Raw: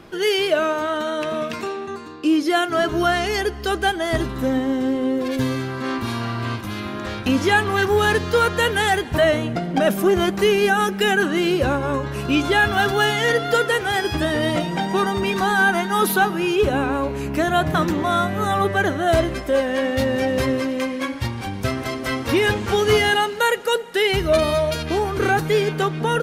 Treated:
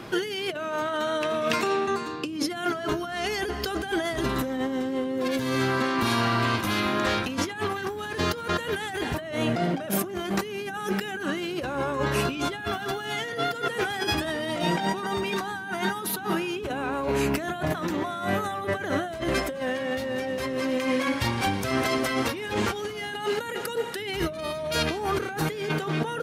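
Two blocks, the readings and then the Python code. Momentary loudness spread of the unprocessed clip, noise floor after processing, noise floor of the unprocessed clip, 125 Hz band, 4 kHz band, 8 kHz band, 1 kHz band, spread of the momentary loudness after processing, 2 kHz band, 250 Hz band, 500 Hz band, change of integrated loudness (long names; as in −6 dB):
8 LU, −35 dBFS, −30 dBFS, −6.5 dB, −6.5 dB, −4.5 dB, −7.5 dB, 5 LU, −8.5 dB, −6.5 dB, −8.5 dB, −7.5 dB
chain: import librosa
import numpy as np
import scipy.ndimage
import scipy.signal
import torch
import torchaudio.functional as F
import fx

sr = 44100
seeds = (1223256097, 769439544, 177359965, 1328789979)

y = fx.low_shelf(x, sr, hz=210.0, db=-10.0)
y = fx.over_compress(y, sr, threshold_db=-29.0, ratio=-1.0)
y = fx.dmg_noise_band(y, sr, seeds[0], low_hz=100.0, high_hz=330.0, level_db=-47.0)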